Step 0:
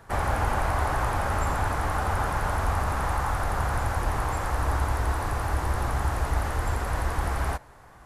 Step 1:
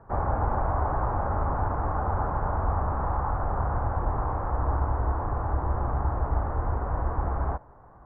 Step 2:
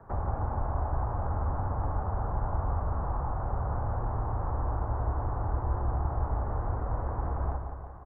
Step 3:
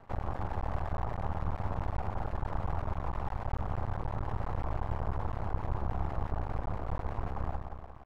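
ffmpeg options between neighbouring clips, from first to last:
ffmpeg -i in.wav -af "lowpass=frequency=1200:width=0.5412,lowpass=frequency=1200:width=1.3066" out.wav
ffmpeg -i in.wav -filter_complex "[0:a]acrossover=split=160|1100[link_01][link_02][link_03];[link_01]acompressor=threshold=-28dB:ratio=4[link_04];[link_02]acompressor=threshold=-38dB:ratio=4[link_05];[link_03]acompressor=threshold=-51dB:ratio=4[link_06];[link_04][link_05][link_06]amix=inputs=3:normalize=0,aecho=1:1:175|350|525|700|875|1050:0.447|0.232|0.121|0.0628|0.0327|0.017" out.wav
ffmpeg -i in.wav -af "aeval=exprs='max(val(0),0)':channel_layout=same" out.wav

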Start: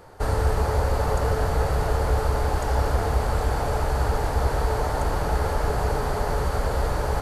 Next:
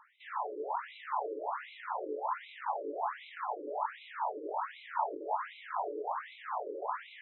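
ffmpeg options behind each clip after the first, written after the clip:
ffmpeg -i in.wav -af "flanger=delay=19:depth=5.3:speed=1.1,equalizer=frequency=250:width_type=o:width=0.33:gain=6,equalizer=frequency=500:width_type=o:width=0.33:gain=-10,equalizer=frequency=1000:width_type=o:width=0.33:gain=10,equalizer=frequency=1600:width_type=o:width=0.33:gain=-3,afftfilt=real='re*between(b*sr/1024,390*pow(2900/390,0.5+0.5*sin(2*PI*1.3*pts/sr))/1.41,390*pow(2900/390,0.5+0.5*sin(2*PI*1.3*pts/sr))*1.41)':imag='im*between(b*sr/1024,390*pow(2900/390,0.5+0.5*sin(2*PI*1.3*pts/sr))/1.41,390*pow(2900/390,0.5+0.5*sin(2*PI*1.3*pts/sr))*1.41)':win_size=1024:overlap=0.75,volume=-1.5dB" out.wav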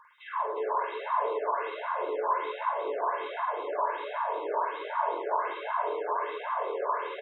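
ffmpeg -i in.wav -filter_complex "[0:a]aecho=1:1:1.9:0.82,asplit=2[link_01][link_02];[link_02]aecho=0:1:48|108|181|359:0.668|0.376|0.282|0.596[link_03];[link_01][link_03]amix=inputs=2:normalize=0,volume=1.5dB" out.wav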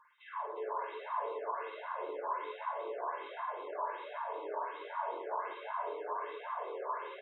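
ffmpeg -i in.wav -af "flanger=delay=7.7:depth=3.2:regen=-44:speed=0.28:shape=sinusoidal,volume=-4.5dB" out.wav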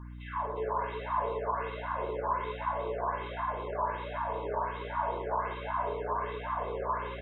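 ffmpeg -i in.wav -af "aeval=exprs='val(0)+0.00398*(sin(2*PI*60*n/s)+sin(2*PI*2*60*n/s)/2+sin(2*PI*3*60*n/s)/3+sin(2*PI*4*60*n/s)/4+sin(2*PI*5*60*n/s)/5)':channel_layout=same,volume=5.5dB" out.wav

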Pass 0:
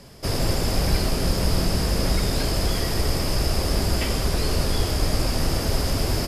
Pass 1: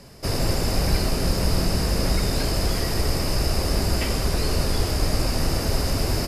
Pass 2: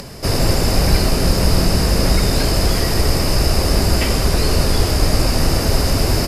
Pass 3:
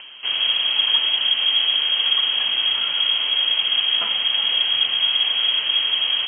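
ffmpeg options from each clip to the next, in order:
ffmpeg -i in.wav -af "bandreject=frequency=3300:width=11" out.wav
ffmpeg -i in.wav -af "acompressor=mode=upward:threshold=-34dB:ratio=2.5,volume=7dB" out.wav
ffmpeg -i in.wav -af "lowpass=frequency=2800:width_type=q:width=0.5098,lowpass=frequency=2800:width_type=q:width=0.6013,lowpass=frequency=2800:width_type=q:width=0.9,lowpass=frequency=2800:width_type=q:width=2.563,afreqshift=-3300,volume=-5.5dB" out.wav

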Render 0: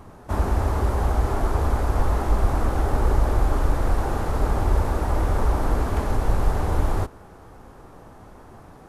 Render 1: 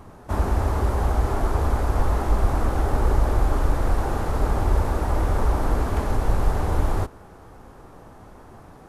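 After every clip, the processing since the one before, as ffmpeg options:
ffmpeg -i in.wav -af anull out.wav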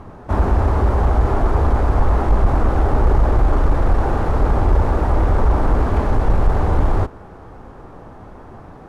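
ffmpeg -i in.wav -filter_complex "[0:a]aemphasis=mode=reproduction:type=75fm,asplit=2[link_01][link_02];[link_02]aeval=exprs='0.473*sin(PI/2*2*val(0)/0.473)':channel_layout=same,volume=-9.5dB[link_03];[link_01][link_03]amix=inputs=2:normalize=0" out.wav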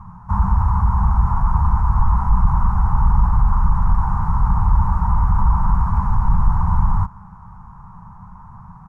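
ffmpeg -i in.wav -af "firequalizer=gain_entry='entry(100,0);entry(190,5);entry(270,-28);entry(570,-29);entry(940,6);entry(1700,-12);entry(3200,-23);entry(5700,-11)':delay=0.05:min_phase=1" out.wav

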